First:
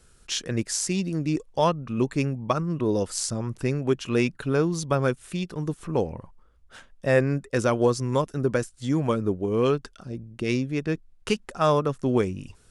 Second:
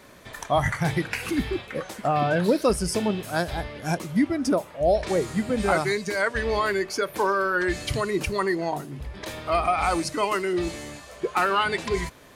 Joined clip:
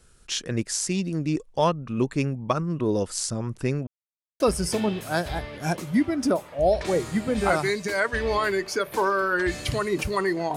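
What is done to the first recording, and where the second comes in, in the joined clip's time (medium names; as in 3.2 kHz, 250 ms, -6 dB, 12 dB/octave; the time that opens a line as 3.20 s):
first
3.87–4.40 s: mute
4.40 s: go over to second from 2.62 s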